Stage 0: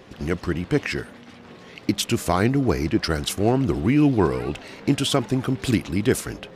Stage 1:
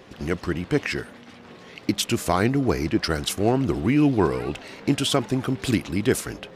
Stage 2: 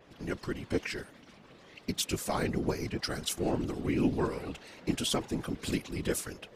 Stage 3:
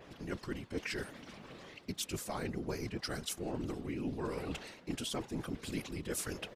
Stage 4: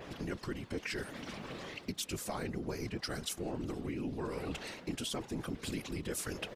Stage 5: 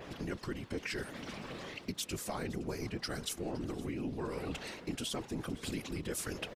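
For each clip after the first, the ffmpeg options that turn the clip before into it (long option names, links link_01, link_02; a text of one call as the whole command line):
ffmpeg -i in.wav -af "lowshelf=frequency=220:gain=-3" out.wav
ffmpeg -i in.wav -af "afftfilt=real='hypot(re,im)*cos(2*PI*random(0))':imag='hypot(re,im)*sin(2*PI*random(1))':win_size=512:overlap=0.75,adynamicequalizer=threshold=0.00447:dfrequency=3800:dqfactor=0.7:tfrequency=3800:tqfactor=0.7:attack=5:release=100:ratio=0.375:range=2.5:mode=boostabove:tftype=highshelf,volume=-4dB" out.wav
ffmpeg -i in.wav -filter_complex "[0:a]areverse,acompressor=threshold=-40dB:ratio=6,areverse,asplit=2[link_01][link_02];[link_02]adelay=1516,volume=-27dB,highshelf=frequency=4000:gain=-34.1[link_03];[link_01][link_03]amix=inputs=2:normalize=0,volume=4dB" out.wav
ffmpeg -i in.wav -af "acompressor=threshold=-43dB:ratio=4,volume=7dB" out.wav
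ffmpeg -i in.wav -af "aecho=1:1:515:0.106" out.wav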